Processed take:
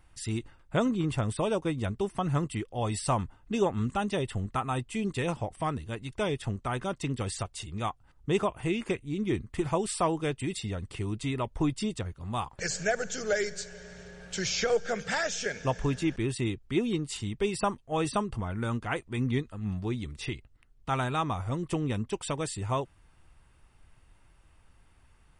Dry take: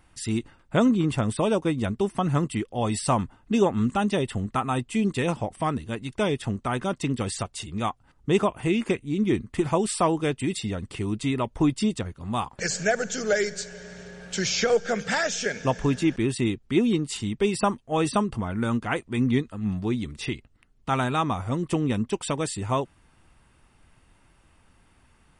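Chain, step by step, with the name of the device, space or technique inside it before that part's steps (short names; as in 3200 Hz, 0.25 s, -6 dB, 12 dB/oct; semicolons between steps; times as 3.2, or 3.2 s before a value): low shelf boost with a cut just above (low shelf 87 Hz +7.5 dB; bell 230 Hz -5 dB 0.8 oct); gain -4.5 dB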